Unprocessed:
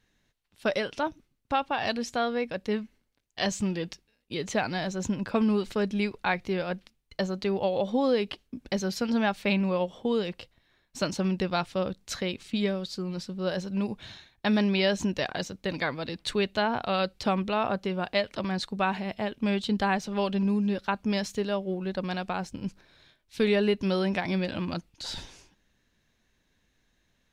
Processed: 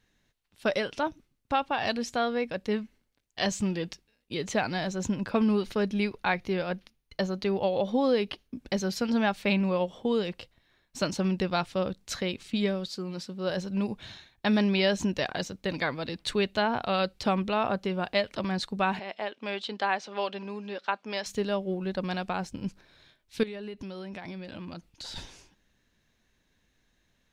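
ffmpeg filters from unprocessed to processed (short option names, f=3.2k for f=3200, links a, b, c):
-filter_complex "[0:a]asettb=1/sr,asplit=3[a][b][c];[a]atrim=end=5.294[d];[b]atrim=start=5.29:end=8.55,asetpts=PTS-STARTPTS,afade=t=in:d=0.004:c=qsin,afade=t=out:st=3.256:d=0.004:c=qsin,bandreject=f=7.7k:w=5.4[e];[c]atrim=start=8.546[f];[d][e]acrossfade=d=0.004:c1=hsin:c2=qsin[g];[g][f]acrossfade=d=0.004:c1=qsin:c2=hsin,asettb=1/sr,asplit=3[h][i][j];[h]atrim=end=12.884[k];[i]atrim=start=12.88:end=13.5,asetpts=PTS-STARTPTS,afade=t=in:d=0.004:c=qsin,afade=t=out:st=0.616:d=0.004:c=qsin,highpass=f=190:p=1[l];[j]atrim=start=13.496[m];[k][l]acrossfade=d=0.004:c1=hsin:c2=qsin[n];[n][m]acrossfade=d=0.004:c1=qsin:c2=hsin,asettb=1/sr,asplit=3[o][p][q];[o]atrim=end=18.994[r];[p]atrim=start=18.99:end=21.26,asetpts=PTS-STARTPTS,afade=t=in:d=0.004:c=qsin,afade=t=out:st=2.266:d=0.004:c=qsin,highpass=470,lowpass=5.3k[s];[q]atrim=start=21.256[t];[r][s]acrossfade=d=0.004:c1=hsin:c2=qsin[u];[u][t]acrossfade=d=0.004:c1=qsin:c2=hsin,asettb=1/sr,asplit=3[v][w][x];[v]atrim=end=23.434[y];[w]atrim=start=23.43:end=25.16,asetpts=PTS-STARTPTS,afade=t=in:d=0.004:c=qsin,afade=t=out:st=1.726:d=0.004:c=qsin,acompressor=threshold=-37dB:ratio=5:attack=3.2:release=140:knee=1:detection=peak[z];[x]atrim=start=25.156[aa];[y][z]acrossfade=d=0.004:c1=hsin:c2=qsin[ab];[ab][aa]acrossfade=d=0.004:c1=qsin:c2=hsin"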